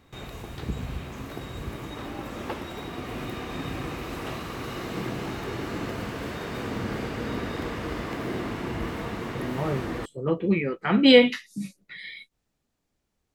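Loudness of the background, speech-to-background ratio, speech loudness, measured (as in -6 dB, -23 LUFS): -33.5 LUFS, 11.5 dB, -22.0 LUFS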